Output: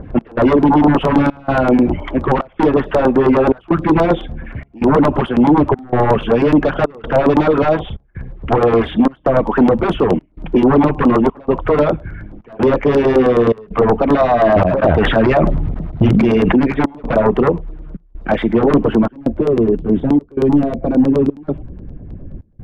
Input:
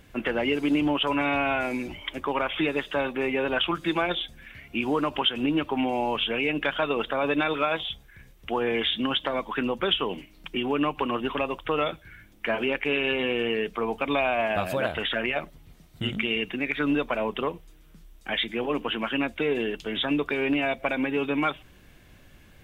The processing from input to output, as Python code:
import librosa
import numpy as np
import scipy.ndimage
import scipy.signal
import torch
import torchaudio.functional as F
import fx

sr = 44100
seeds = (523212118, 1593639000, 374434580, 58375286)

y = fx.high_shelf(x, sr, hz=3100.0, db=-10.0)
y = fx.fold_sine(y, sr, drive_db=11, ceiling_db=-13.5)
y = fx.filter_sweep_lowpass(y, sr, from_hz=980.0, to_hz=410.0, start_s=18.62, end_s=19.55, q=0.76)
y = fx.step_gate(y, sr, bpm=162, pattern='xx..xxxxxxxx', floor_db=-24.0, edge_ms=4.5)
y = fx.filter_lfo_notch(y, sr, shape='saw_down', hz=9.5, low_hz=250.0, high_hz=3500.0, q=0.87)
y = fx.sustainer(y, sr, db_per_s=27.0, at=(14.42, 16.6))
y = F.gain(torch.from_numpy(y), 8.5).numpy()